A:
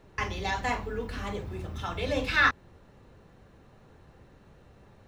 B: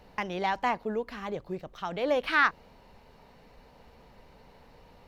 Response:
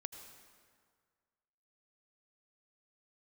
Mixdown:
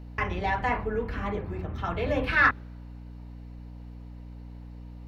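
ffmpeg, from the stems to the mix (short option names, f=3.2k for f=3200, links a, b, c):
-filter_complex "[0:a]lowpass=f=2.4k:w=0.5412,lowpass=f=2.4k:w=1.3066,acontrast=83,volume=-4.5dB[a];[1:a]acrossover=split=130|3000[b][c][d];[c]acompressor=threshold=-29dB:ratio=6[e];[b][e][d]amix=inputs=3:normalize=0,volume=-5dB,asplit=3[f][g][h];[g]volume=-14dB[i];[h]apad=whole_len=223614[j];[a][j]sidechaingate=range=-33dB:threshold=-53dB:ratio=16:detection=peak[k];[2:a]atrim=start_sample=2205[l];[i][l]afir=irnorm=-1:irlink=0[m];[k][f][m]amix=inputs=3:normalize=0,aeval=exprs='val(0)+0.00891*(sin(2*PI*60*n/s)+sin(2*PI*2*60*n/s)/2+sin(2*PI*3*60*n/s)/3+sin(2*PI*4*60*n/s)/4+sin(2*PI*5*60*n/s)/5)':c=same"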